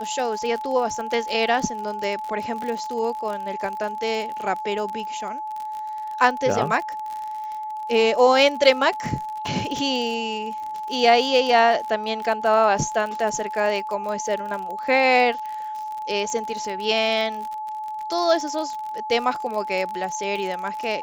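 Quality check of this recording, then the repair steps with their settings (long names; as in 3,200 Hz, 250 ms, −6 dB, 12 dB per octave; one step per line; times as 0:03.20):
surface crackle 43 per second −28 dBFS
whistle 860 Hz −28 dBFS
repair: click removal
notch filter 860 Hz, Q 30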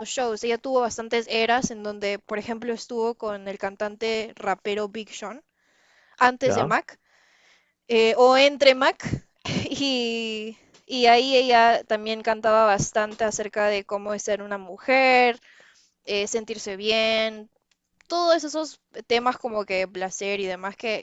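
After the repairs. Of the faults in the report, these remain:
none of them is left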